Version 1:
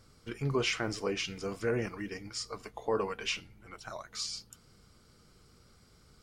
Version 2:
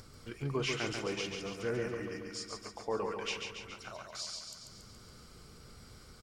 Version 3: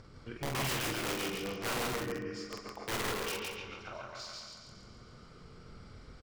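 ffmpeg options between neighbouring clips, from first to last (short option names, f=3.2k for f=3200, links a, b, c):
-filter_complex "[0:a]acompressor=mode=upward:threshold=-40dB:ratio=2.5,asplit=2[a][b];[b]aecho=0:1:140|280|420|560|700|840|980|1120:0.562|0.337|0.202|0.121|0.0729|0.0437|0.0262|0.0157[c];[a][c]amix=inputs=2:normalize=0,volume=-4.5dB"
-af "adynamicsmooth=sensitivity=3:basefreq=3.9k,aeval=exprs='(mod(33.5*val(0)+1,2)-1)/33.5':c=same,aecho=1:1:46.65|163.3|227.4:0.631|0.631|0.251"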